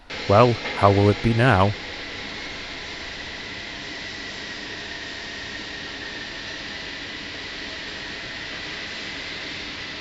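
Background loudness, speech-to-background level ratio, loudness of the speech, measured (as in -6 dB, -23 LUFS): -31.0 LUFS, 12.0 dB, -19.0 LUFS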